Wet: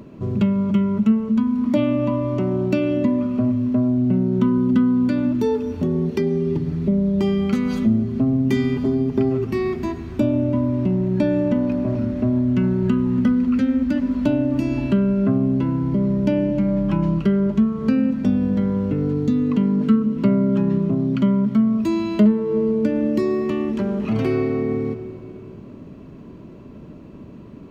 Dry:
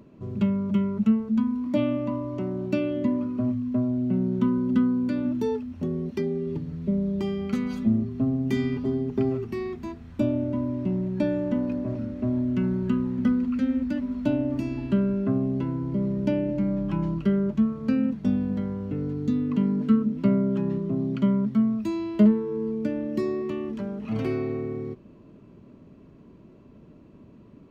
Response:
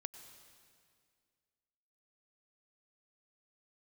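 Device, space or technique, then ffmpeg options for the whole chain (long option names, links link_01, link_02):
ducked reverb: -filter_complex "[0:a]asplit=3[link_01][link_02][link_03];[1:a]atrim=start_sample=2205[link_04];[link_02][link_04]afir=irnorm=-1:irlink=0[link_05];[link_03]apad=whole_len=1221838[link_06];[link_05][link_06]sidechaincompress=threshold=-27dB:ratio=8:attack=5.1:release=356,volume=11dB[link_07];[link_01][link_07]amix=inputs=2:normalize=0"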